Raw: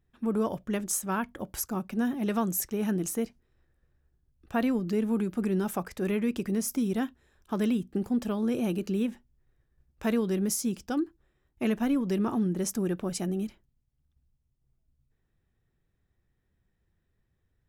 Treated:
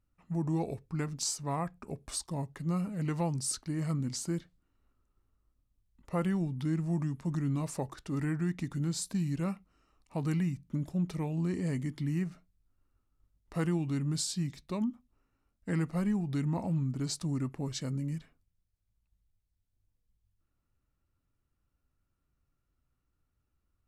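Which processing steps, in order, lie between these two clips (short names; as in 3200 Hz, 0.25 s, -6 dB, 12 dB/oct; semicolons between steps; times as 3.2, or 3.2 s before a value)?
speed mistake 45 rpm record played at 33 rpm; gain -4 dB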